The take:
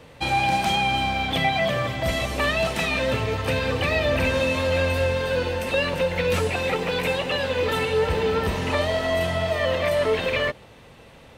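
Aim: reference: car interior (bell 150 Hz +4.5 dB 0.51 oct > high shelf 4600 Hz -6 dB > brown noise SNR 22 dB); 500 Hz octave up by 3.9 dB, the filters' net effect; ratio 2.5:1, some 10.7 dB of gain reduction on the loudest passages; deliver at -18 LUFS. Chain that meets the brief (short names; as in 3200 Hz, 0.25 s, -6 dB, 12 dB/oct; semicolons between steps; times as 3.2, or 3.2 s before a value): bell 500 Hz +4.5 dB; compressor 2.5:1, threshold -32 dBFS; bell 150 Hz +4.5 dB 0.51 oct; high shelf 4600 Hz -6 dB; brown noise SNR 22 dB; gain +12.5 dB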